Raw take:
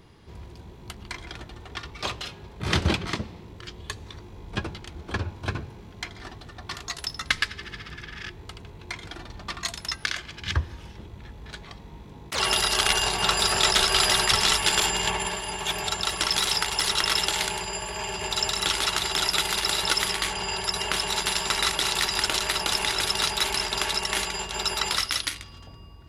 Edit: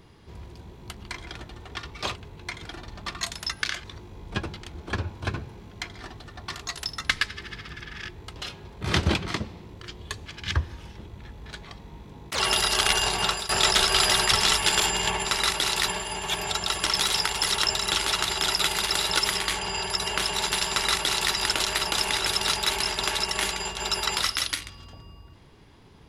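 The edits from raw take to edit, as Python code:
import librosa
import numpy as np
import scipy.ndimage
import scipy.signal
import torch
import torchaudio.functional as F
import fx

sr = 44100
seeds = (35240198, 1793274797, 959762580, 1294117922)

y = fx.edit(x, sr, fx.swap(start_s=2.15, length_s=1.9, other_s=8.57, other_length_s=1.69),
    fx.fade_out_to(start_s=13.21, length_s=0.28, floor_db=-18.5),
    fx.cut(start_s=17.05, length_s=1.37),
    fx.duplicate(start_s=21.44, length_s=0.63, to_s=15.25), tone=tone)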